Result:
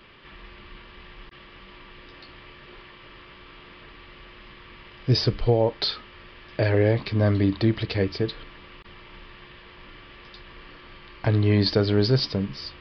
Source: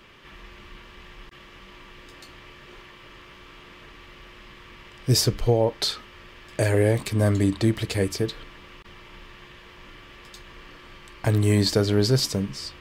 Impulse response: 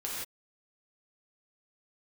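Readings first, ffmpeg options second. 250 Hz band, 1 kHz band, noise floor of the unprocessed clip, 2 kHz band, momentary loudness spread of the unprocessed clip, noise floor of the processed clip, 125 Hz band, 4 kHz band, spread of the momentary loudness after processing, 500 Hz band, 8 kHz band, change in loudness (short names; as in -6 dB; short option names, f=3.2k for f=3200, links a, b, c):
0.0 dB, 0.0 dB, -48 dBFS, 0.0 dB, 10 LU, -48 dBFS, 0.0 dB, -1.0 dB, 10 LU, 0.0 dB, under -20 dB, -0.5 dB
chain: -af "aresample=11025,aresample=44100"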